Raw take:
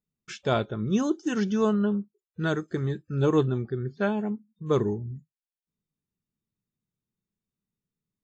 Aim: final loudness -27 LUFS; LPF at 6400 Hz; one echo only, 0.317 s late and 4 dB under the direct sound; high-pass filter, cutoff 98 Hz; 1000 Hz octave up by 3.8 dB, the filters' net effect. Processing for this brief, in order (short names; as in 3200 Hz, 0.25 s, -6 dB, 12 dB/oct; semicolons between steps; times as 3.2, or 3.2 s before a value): HPF 98 Hz; LPF 6400 Hz; bell 1000 Hz +5 dB; echo 0.317 s -4 dB; gain -1 dB